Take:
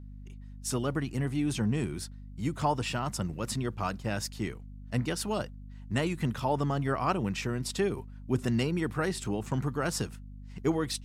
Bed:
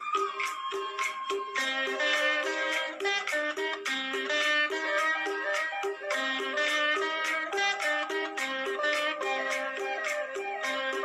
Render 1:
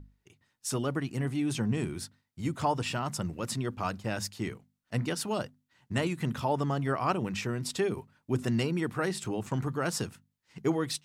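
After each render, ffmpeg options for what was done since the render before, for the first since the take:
-af "bandreject=f=50:t=h:w=6,bandreject=f=100:t=h:w=6,bandreject=f=150:t=h:w=6,bandreject=f=200:t=h:w=6,bandreject=f=250:t=h:w=6"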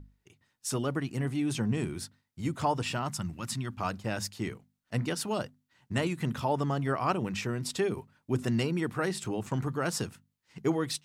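-filter_complex "[0:a]asettb=1/sr,asplit=3[a][b][c];[a]atrim=end=3.104[d];[b]atrim=start=3.1:end=3.8,asetpts=PTS-STARTPTS,afade=t=in:d=0.004:c=qsin,afade=t=out:st=0.696:d=0.004:c=qsin,equalizer=f=470:t=o:w=0.84:g=-14[e];[c]atrim=start=3.796[f];[d][e]acrossfade=d=0.004:c1=hsin:c2=qsin[g];[g][f]acrossfade=d=0.004:c1=qsin:c2=hsin"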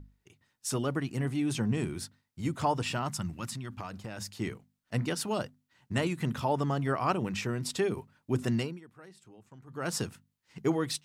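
-filter_complex "[0:a]asettb=1/sr,asplit=3[a][b][c];[a]atrim=end=3.494[d];[b]atrim=start=3.49:end=4.31,asetpts=PTS-STARTPTS,afade=t=in:d=0.004:c=qsin,afade=t=out:st=0.816:d=0.004:c=qsin,acompressor=threshold=-34dB:ratio=12:attack=3.2:release=140:knee=1:detection=peak[e];[c]atrim=start=4.306[f];[d][e]acrossfade=d=0.004:c1=hsin:c2=qsin[g];[g][f]acrossfade=d=0.004:c1=qsin:c2=hsin,asplit=3[h][i][j];[h]atrim=end=8.8,asetpts=PTS-STARTPTS,afade=t=out:st=8.53:d=0.27:silence=0.0841395[k];[i]atrim=start=8.8:end=9.67,asetpts=PTS-STARTPTS,volume=-21.5dB[l];[j]atrim=start=9.67,asetpts=PTS-STARTPTS,afade=t=in:d=0.27:silence=0.0841395[m];[k][l][m]concat=n=3:v=0:a=1"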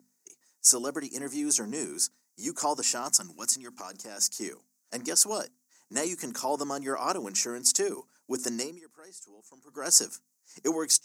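-af "highpass=f=260:w=0.5412,highpass=f=260:w=1.3066,highshelf=f=4.6k:t=q:w=3:g=12"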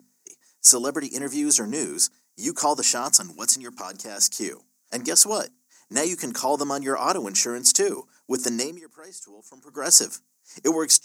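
-af "volume=6.5dB,alimiter=limit=-1dB:level=0:latency=1"

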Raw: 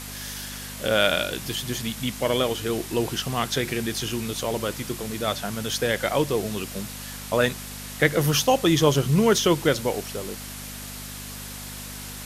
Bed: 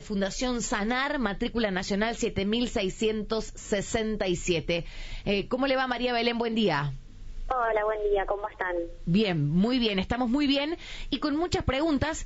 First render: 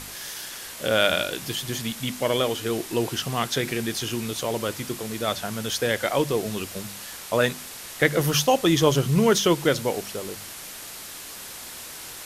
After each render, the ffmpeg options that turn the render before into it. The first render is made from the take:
-af "bandreject=f=50:t=h:w=4,bandreject=f=100:t=h:w=4,bandreject=f=150:t=h:w=4,bandreject=f=200:t=h:w=4,bandreject=f=250:t=h:w=4"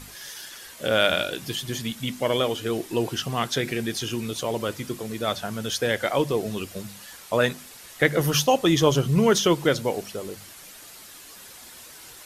-af "afftdn=nr=8:nf=-39"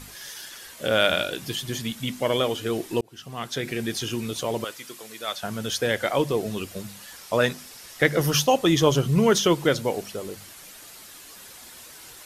-filter_complex "[0:a]asettb=1/sr,asplit=3[a][b][c];[a]atrim=end=4.644[d];[b]atrim=start=4.64:end=5.43,asetpts=PTS-STARTPTS,afade=t=in:d=0.004:c=qsin,afade=t=out:st=0.786:d=0.004:c=qsin,highpass=f=1.3k:p=1[e];[c]atrim=start=5.426[f];[d][e]acrossfade=d=0.004:c1=hsin:c2=qsin[g];[g][f]acrossfade=d=0.004:c1=qsin:c2=hsin,asettb=1/sr,asplit=3[h][i][j];[h]atrim=end=7.164[k];[i]atrim=start=7.16:end=8.36,asetpts=PTS-STARTPTS,afade=t=in:d=0.004:c=qsin,afade=t=out:st=1.196:d=0.004:c=qsin,equalizer=f=5.3k:w=4.7:g=6[l];[j]atrim=start=8.356[m];[k][l]acrossfade=d=0.004:c1=hsin:c2=qsin[n];[n][m]acrossfade=d=0.004:c1=qsin:c2=hsin,asplit=2[o][p];[o]atrim=end=3.01,asetpts=PTS-STARTPTS,afade=t=out:st=3.006:d=0.004:c=hsin[q];[p]atrim=start=3.01,asetpts=PTS-STARTPTS,afade=t=in:d=0.88[r];[q][r]concat=n=2:v=0:a=1"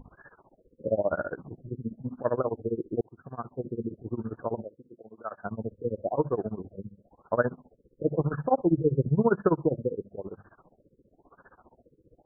-af "tremolo=f=15:d=0.94,afftfilt=real='re*lt(b*sr/1024,520*pow(1800/520,0.5+0.5*sin(2*PI*0.98*pts/sr)))':imag='im*lt(b*sr/1024,520*pow(1800/520,0.5+0.5*sin(2*PI*0.98*pts/sr)))':win_size=1024:overlap=0.75"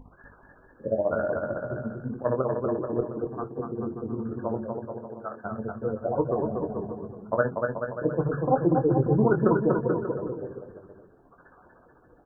-filter_complex "[0:a]asplit=2[a][b];[b]adelay=23,volume=-7.5dB[c];[a][c]amix=inputs=2:normalize=0,asplit=2[d][e];[e]aecho=0:1:240|432|585.6|708.5|806.8:0.631|0.398|0.251|0.158|0.1[f];[d][f]amix=inputs=2:normalize=0"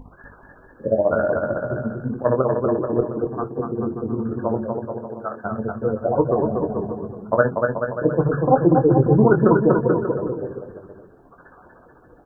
-af "volume=7dB,alimiter=limit=-3dB:level=0:latency=1"

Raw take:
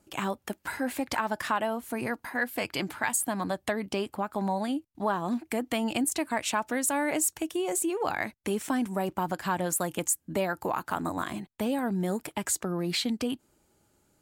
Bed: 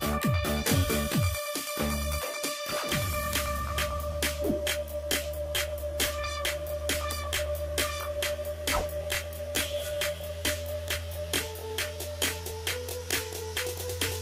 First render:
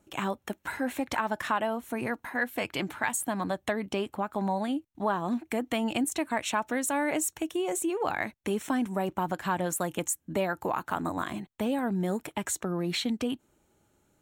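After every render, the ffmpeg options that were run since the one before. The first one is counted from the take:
-af "equalizer=f=11k:t=o:w=1.1:g=-5,bandreject=f=4.8k:w=5.3"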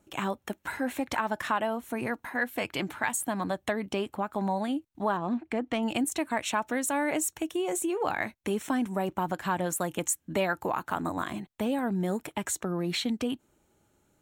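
-filter_complex "[0:a]asettb=1/sr,asplit=3[a][b][c];[a]atrim=end=5.174[d];[b]atrim=start=5.17:end=5.83,asetpts=PTS-STARTPTS,afade=t=in:d=0.004:c=qsin,afade=t=out:st=0.656:d=0.004:c=qsin,adynamicsmooth=sensitivity=2.5:basefreq=3.4k[e];[c]atrim=start=5.826[f];[d][e]acrossfade=d=0.004:c1=hsin:c2=qsin[g];[g][f]acrossfade=d=0.004:c1=qsin:c2=hsin,asettb=1/sr,asplit=3[h][i][j];[h]atrim=end=7.684[k];[i]atrim=start=7.68:end=8.35,asetpts=PTS-STARTPTS,afade=t=in:d=0.004:c=qsin,afade=t=out:st=0.666:d=0.004:c=qsin,asplit=2[l][m];[m]adelay=17,volume=-13dB[n];[l][n]amix=inputs=2:normalize=0,atrim=end_sample=29547[o];[j]atrim=start=8.346[p];[k][o]acrossfade=d=0.004:c1=hsin:c2=qsin[q];[q][p]acrossfade=d=0.004:c1=qsin:c2=hsin,asettb=1/sr,asplit=3[r][s][t];[r]atrim=end=10.044[u];[s]atrim=start=10.04:end=10.58,asetpts=PTS-STARTPTS,afade=t=in:d=0.004:c=qsin,afade=t=out:st=0.536:d=0.004:c=qsin,equalizer=f=2.8k:w=0.45:g=4.5[v];[t]atrim=start=10.576[w];[u][v]acrossfade=d=0.004:c1=hsin:c2=qsin[x];[x][w]acrossfade=d=0.004:c1=qsin:c2=hsin"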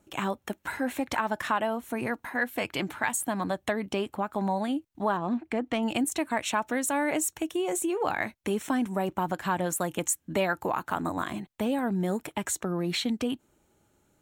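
-af "volume=1dB"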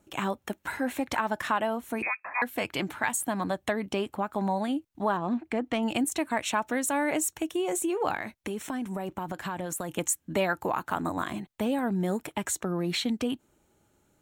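-filter_complex "[0:a]asettb=1/sr,asplit=3[a][b][c];[a]atrim=end=2.024[d];[b]atrim=start=2.02:end=2.42,asetpts=PTS-STARTPTS,afade=t=in:d=0.004:c=qsin,afade=t=out:st=0.396:d=0.004:c=qsin,lowpass=f=2.3k:t=q:w=0.5098,lowpass=f=2.3k:t=q:w=0.6013,lowpass=f=2.3k:t=q:w=0.9,lowpass=f=2.3k:t=q:w=2.563,afreqshift=-2700[e];[c]atrim=start=2.416[f];[d][e]acrossfade=d=0.004:c1=hsin:c2=qsin[g];[g][f]acrossfade=d=0.004:c1=qsin:c2=hsin,asettb=1/sr,asplit=3[h][i][j];[h]atrim=end=8.164[k];[i]atrim=start=8.16:end=9.89,asetpts=PTS-STARTPTS,afade=t=in:d=0.004:c=qsin,afade=t=out:st=1.726:d=0.004:c=qsin,acompressor=threshold=-29dB:ratio=6:attack=3.2:release=140:knee=1:detection=peak[l];[j]atrim=start=9.886[m];[k][l]acrossfade=d=0.004:c1=hsin:c2=qsin[n];[n][m]acrossfade=d=0.004:c1=qsin:c2=hsin"

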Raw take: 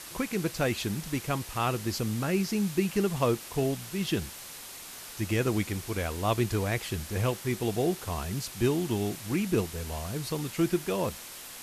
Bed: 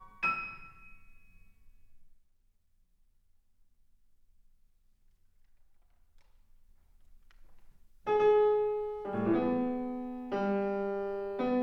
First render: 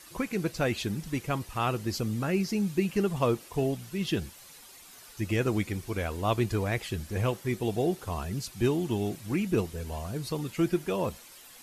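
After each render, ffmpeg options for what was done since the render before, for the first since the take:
-af "afftdn=nr=10:nf=-44"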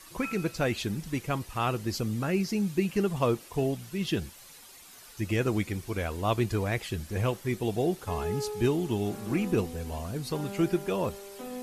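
-filter_complex "[1:a]volume=-9dB[a];[0:a][a]amix=inputs=2:normalize=0"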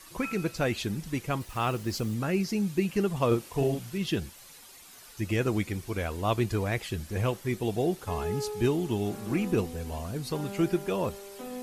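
-filter_complex "[0:a]asettb=1/sr,asplit=3[a][b][c];[a]atrim=end=1.414[d];[b]atrim=start=1.41:end=2.15,asetpts=PTS-STARTPTS,afade=t=in:d=0.004:c=qsin,afade=t=out:st=0.736:d=0.004:c=qsin,acrusher=bits=7:mix=0:aa=0.5[e];[c]atrim=start=2.146[f];[d][e]acrossfade=d=0.004:c1=hsin:c2=qsin[g];[g][f]acrossfade=d=0.004:c1=qsin:c2=hsin,asettb=1/sr,asplit=3[h][i][j];[h]atrim=end=3.274[k];[i]atrim=start=3.27:end=3.98,asetpts=PTS-STARTPTS,afade=t=in:d=0.004:c=qsin,afade=t=out:st=0.706:d=0.004:c=qsin,asplit=2[l][m];[m]adelay=43,volume=-3.5dB[n];[l][n]amix=inputs=2:normalize=0,atrim=end_sample=31311[o];[j]atrim=start=3.976[p];[k][o]acrossfade=d=0.004:c1=hsin:c2=qsin[q];[q][p]acrossfade=d=0.004:c1=qsin:c2=hsin"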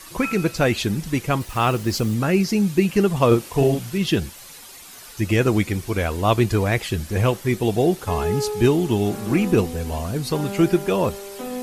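-af "volume=9dB"

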